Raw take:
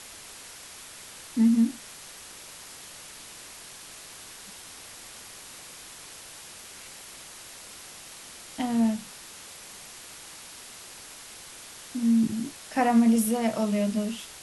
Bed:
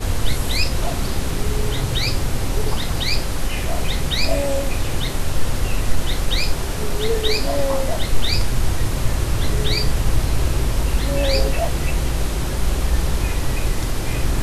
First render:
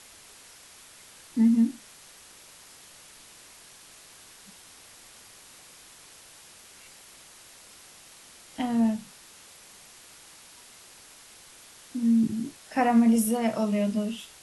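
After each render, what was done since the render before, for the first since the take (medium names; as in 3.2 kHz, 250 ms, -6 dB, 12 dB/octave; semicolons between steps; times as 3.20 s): noise print and reduce 6 dB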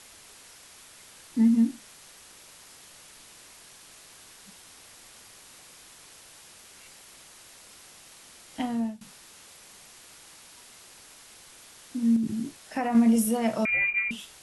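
8.59–9.01 s: fade out, to -19.5 dB; 12.16–12.95 s: compression, threshold -24 dBFS; 13.65–14.11 s: frequency inversion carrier 2.6 kHz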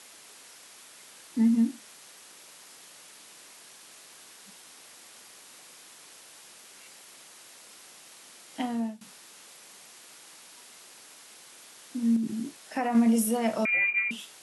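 high-pass 200 Hz 12 dB/octave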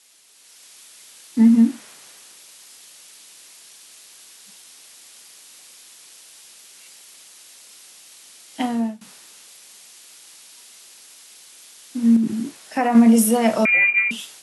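level rider gain up to 6 dB; three bands expanded up and down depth 40%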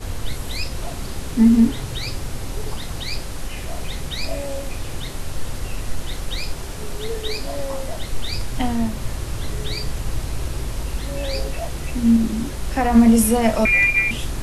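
add bed -7 dB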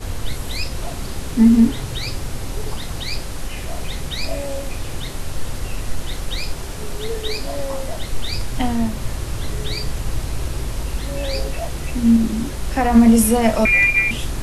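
trim +1.5 dB; peak limiter -2 dBFS, peak gain reduction 1 dB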